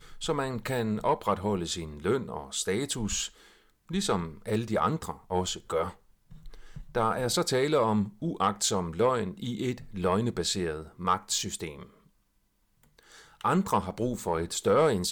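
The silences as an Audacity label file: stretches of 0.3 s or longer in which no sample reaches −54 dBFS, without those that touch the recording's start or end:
12.070000	12.830000	silence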